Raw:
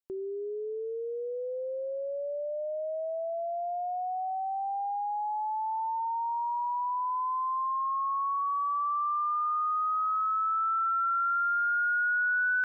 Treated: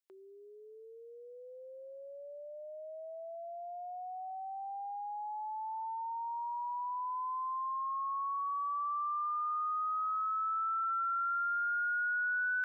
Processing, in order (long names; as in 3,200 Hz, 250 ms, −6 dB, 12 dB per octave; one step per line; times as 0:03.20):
downward compressor, threshold −30 dBFS, peak gain reduction 4.5 dB
high-pass filter 1,200 Hz 12 dB per octave